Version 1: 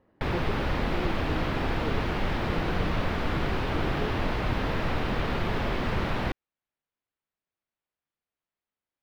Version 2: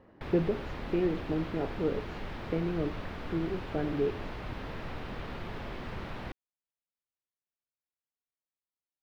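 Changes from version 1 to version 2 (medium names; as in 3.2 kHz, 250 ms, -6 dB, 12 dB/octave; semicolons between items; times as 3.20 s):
speech +7.5 dB; background -11.5 dB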